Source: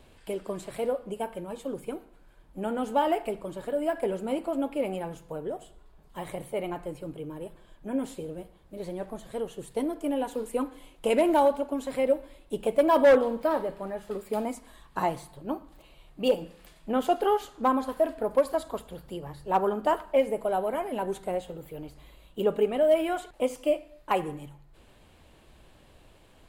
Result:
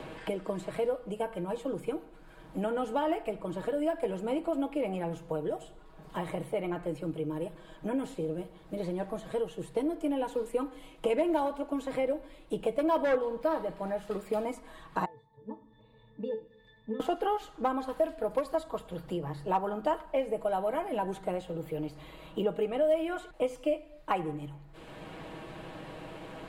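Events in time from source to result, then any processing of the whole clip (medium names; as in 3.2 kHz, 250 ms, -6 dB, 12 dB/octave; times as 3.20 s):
15.05–17.00 s: pitch-class resonator A, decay 0.23 s
whole clip: treble shelf 7.3 kHz -8.5 dB; comb 6.3 ms, depth 50%; three bands compressed up and down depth 70%; trim -3.5 dB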